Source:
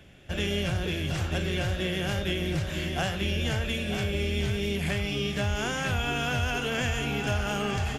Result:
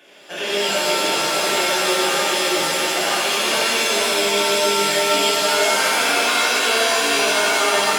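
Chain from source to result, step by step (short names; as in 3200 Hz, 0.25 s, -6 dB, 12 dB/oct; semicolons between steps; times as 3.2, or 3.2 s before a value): Bessel high-pass 400 Hz, order 6; limiter -24 dBFS, peak gain reduction 5.5 dB; shimmer reverb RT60 2.3 s, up +7 st, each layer -2 dB, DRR -8 dB; gain +4 dB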